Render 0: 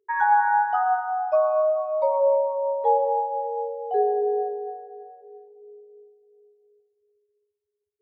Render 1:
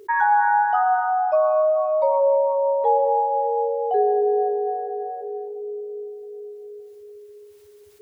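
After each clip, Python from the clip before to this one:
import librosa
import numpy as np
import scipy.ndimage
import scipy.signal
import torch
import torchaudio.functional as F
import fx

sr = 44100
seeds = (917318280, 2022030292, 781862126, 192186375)

y = fx.env_flatten(x, sr, amount_pct=50)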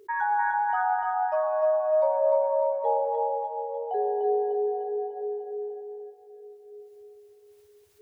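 y = fx.echo_feedback(x, sr, ms=299, feedback_pct=57, wet_db=-4.0)
y = y * librosa.db_to_amplitude(-8.0)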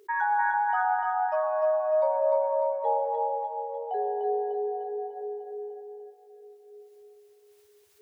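y = fx.low_shelf(x, sr, hz=390.0, db=-12.0)
y = y * librosa.db_to_amplitude(2.0)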